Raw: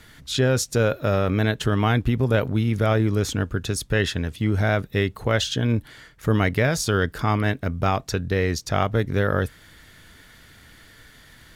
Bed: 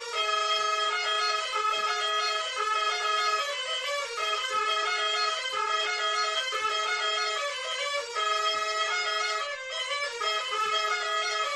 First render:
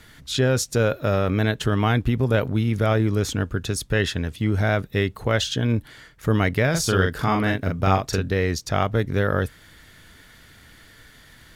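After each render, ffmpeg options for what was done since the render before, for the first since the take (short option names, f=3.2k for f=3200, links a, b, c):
-filter_complex "[0:a]asettb=1/sr,asplit=3[a][b][c];[a]atrim=end=6.704[d];[b]atrim=start=6.7:end=8.3,asetpts=PTS-STARTPTS,afade=t=in:d=0.004:c=qsin,afade=t=out:st=1.596:d=0.004:c=qsin,asplit=2[e][f];[f]adelay=42,volume=-3dB[g];[e][g]amix=inputs=2:normalize=0,atrim=end_sample=70560[h];[c]atrim=start=8.296[i];[d][h]acrossfade=d=0.004:c1=hsin:c2=qsin[j];[j][i]acrossfade=d=0.004:c1=qsin:c2=hsin"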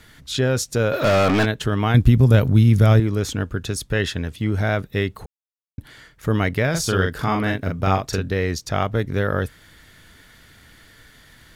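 -filter_complex "[0:a]asplit=3[a][b][c];[a]afade=t=out:st=0.92:d=0.02[d];[b]asplit=2[e][f];[f]highpass=f=720:p=1,volume=30dB,asoftclip=type=tanh:threshold=-10.5dB[g];[e][g]amix=inputs=2:normalize=0,lowpass=f=3.5k:p=1,volume=-6dB,afade=t=in:st=0.92:d=0.02,afade=t=out:st=1.44:d=0.02[h];[c]afade=t=in:st=1.44:d=0.02[i];[d][h][i]amix=inputs=3:normalize=0,asettb=1/sr,asplit=3[j][k][l];[j]atrim=end=1.944[m];[k]atrim=start=1.94:end=3,asetpts=PTS-STARTPTS,afade=t=in:d=0.004:c=qsin,afade=t=out:st=1.056:d=0.004:c=qsin,bass=f=250:g=10,treble=f=4k:g=8[n];[l]atrim=start=2.996[o];[m][n]acrossfade=d=0.004:c1=hsin:c2=qsin[p];[p][o]acrossfade=d=0.004:c1=qsin:c2=hsin,asplit=3[q][r][s];[q]atrim=end=5.26,asetpts=PTS-STARTPTS,afade=t=out:st=5.256:d=0.004:c=hsin[t];[r]atrim=start=5.26:end=5.78,asetpts=PTS-STARTPTS,volume=0[u];[s]atrim=start=5.78,asetpts=PTS-STARTPTS,afade=t=in:d=0.004:c=hsin[v];[t][u][v]concat=n=3:v=0:a=1"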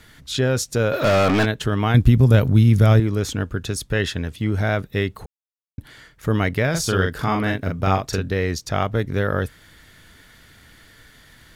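-af anull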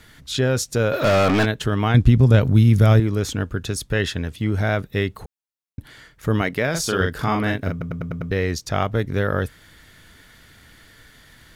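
-filter_complex "[0:a]asettb=1/sr,asplit=3[a][b][c];[a]atrim=end=1.884[d];[b]atrim=start=1.88:end=2.46,asetpts=PTS-STARTPTS,afade=t=in:d=0.004:c=qsin,afade=t=out:st=0.576:d=0.004:c=qsin,lowpass=8.8k[e];[c]atrim=start=2.456[f];[d][e]acrossfade=d=0.004:c1=hsin:c2=qsin[g];[g][f]acrossfade=d=0.004:c1=qsin:c2=hsin,asettb=1/sr,asplit=3[h][i][j];[h]atrim=end=6.414[k];[i]atrim=start=6.41:end=7.01,asetpts=PTS-STARTPTS,afade=t=in:d=0.004:c=qsin,afade=t=out:st=0.596:d=0.004:c=qsin,equalizer=f=85:t=o:w=0.92:g=-15[l];[j]atrim=start=7.006[m];[k][l]acrossfade=d=0.004:c1=hsin:c2=qsin[n];[n][m]acrossfade=d=0.004:c1=qsin:c2=hsin,asplit=7[o][p][q][r][s][t][u];[o]atrim=end=7.812[v];[p]atrim=start=7.708:end=7.812[w];[q]atrim=start=7.708:end=7.812[x];[r]atrim=start=7.708:end=7.812[y];[s]atrim=start=7.708:end=7.812[z];[t]atrim=start=7.708:end=7.812[aa];[u]atrim=start=8.308[ab];[v][w]acrossfade=d=0.004:c1=hsin:c2=hsin[ac];[ac][x]acrossfade=d=0.004:c1=hsin:c2=hsin[ad];[ad][y]acrossfade=d=0.004:c1=hsin:c2=hsin[ae];[ae][z]acrossfade=d=0.004:c1=hsin:c2=hsin[af];[af][aa]acrossfade=d=0.004:c1=hsin:c2=hsin[ag];[ag][ab]acrossfade=d=0.004:c1=hsin:c2=hsin"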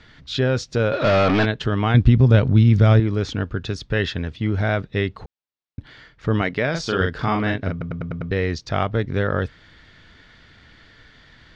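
-af "lowpass=f=5k:w=0.5412,lowpass=f=5k:w=1.3066"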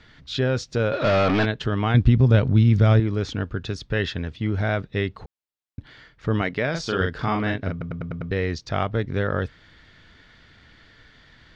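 -af "volume=-2.5dB"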